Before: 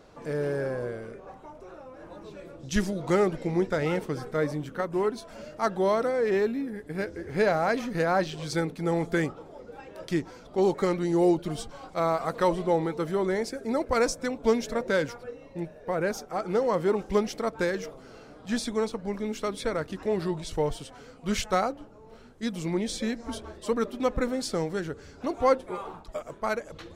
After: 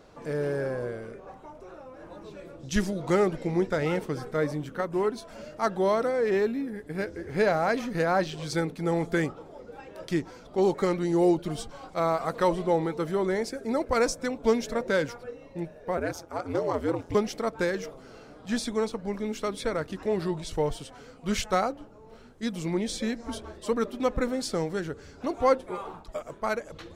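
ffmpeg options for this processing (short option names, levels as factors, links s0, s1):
-filter_complex "[0:a]asettb=1/sr,asplit=3[s0][s1][s2];[s0]atrim=end=15.974[s3];[s1]atrim=start=15.97:end=17.15,asetpts=PTS-STARTPTS,afade=t=in:d=0.004:c=qsin,afade=t=out:st=1.176:d=0.004:c=qsin,aeval=exprs='val(0)*sin(2*PI*86*n/s)':c=same[s4];[s2]atrim=start=17.146[s5];[s3][s4]acrossfade=d=0.004:c1=hsin:c2=qsin[s6];[s6][s5]acrossfade=d=0.004:c1=qsin:c2=hsin"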